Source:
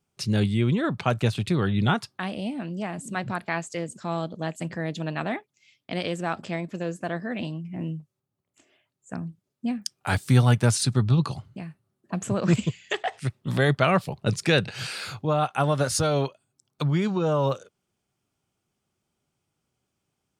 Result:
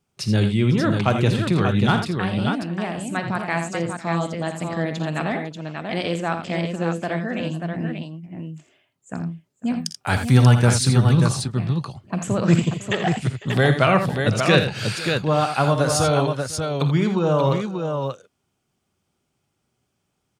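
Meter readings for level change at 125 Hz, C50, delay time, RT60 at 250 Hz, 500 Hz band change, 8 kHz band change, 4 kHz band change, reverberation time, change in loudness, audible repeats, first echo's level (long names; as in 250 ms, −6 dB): +5.5 dB, no reverb audible, 47 ms, no reverb audible, +5.0 dB, +4.0 dB, +5.0 dB, no reverb audible, +5.0 dB, 4, −15.0 dB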